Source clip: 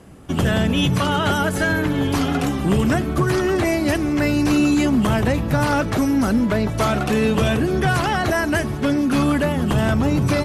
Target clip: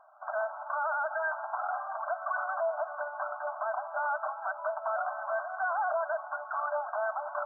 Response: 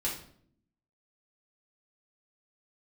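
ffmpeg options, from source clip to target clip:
-af "afftfilt=real='re*between(b*sr/4096,590,1600)':imag='im*between(b*sr/4096,590,1600)':win_size=4096:overlap=0.75,alimiter=limit=0.1:level=0:latency=1:release=22,atempo=1.4,volume=0.708"

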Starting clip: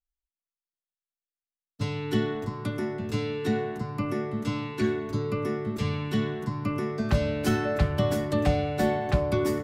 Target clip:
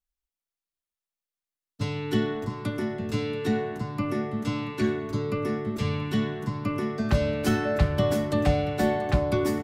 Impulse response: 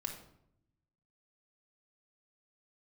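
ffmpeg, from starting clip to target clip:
-filter_complex "[0:a]aecho=1:1:683:0.158,asplit=2[s0][s1];[1:a]atrim=start_sample=2205[s2];[s1][s2]afir=irnorm=-1:irlink=0,volume=0.141[s3];[s0][s3]amix=inputs=2:normalize=0"

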